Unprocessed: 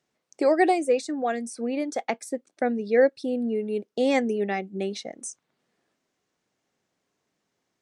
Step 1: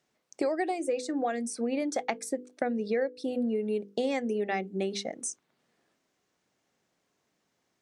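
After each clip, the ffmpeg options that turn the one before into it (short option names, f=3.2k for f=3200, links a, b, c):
-af "bandreject=f=50:t=h:w=6,bandreject=f=100:t=h:w=6,bandreject=f=150:t=h:w=6,bandreject=f=200:t=h:w=6,bandreject=f=250:t=h:w=6,bandreject=f=300:t=h:w=6,bandreject=f=350:t=h:w=6,bandreject=f=400:t=h:w=6,bandreject=f=450:t=h:w=6,bandreject=f=500:t=h:w=6,acompressor=threshold=-27dB:ratio=12,volume=1.5dB"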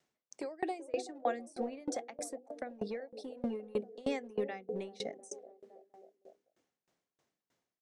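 -filter_complex "[0:a]acrossover=split=380|830[a][b][c];[a]asoftclip=type=hard:threshold=-32dB[d];[b]aecho=1:1:380|703|977.6|1211|1409:0.631|0.398|0.251|0.158|0.1[e];[d][e][c]amix=inputs=3:normalize=0,aeval=exprs='val(0)*pow(10,-26*if(lt(mod(3.2*n/s,1),2*abs(3.2)/1000),1-mod(3.2*n/s,1)/(2*abs(3.2)/1000),(mod(3.2*n/s,1)-2*abs(3.2)/1000)/(1-2*abs(3.2)/1000))/20)':c=same"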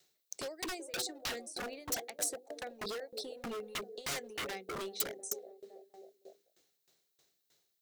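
-af "equalizer=f=250:t=o:w=0.33:g=-8,equalizer=f=400:t=o:w=0.33:g=6,equalizer=f=1k:t=o:w=0.33:g=-5,equalizer=f=4k:t=o:w=0.33:g=9,equalizer=f=10k:t=o:w=0.33:g=-4,aeval=exprs='0.0158*(abs(mod(val(0)/0.0158+3,4)-2)-1)':c=same,crystalizer=i=3.5:c=0"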